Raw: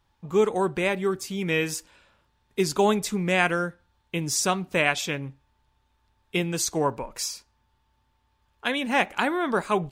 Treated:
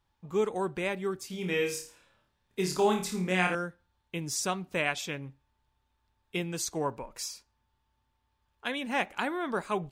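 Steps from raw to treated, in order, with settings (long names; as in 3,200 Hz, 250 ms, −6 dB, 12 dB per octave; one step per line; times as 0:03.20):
0:01.27–0:03.55: flutter between parallel walls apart 4.7 metres, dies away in 0.38 s
level −7 dB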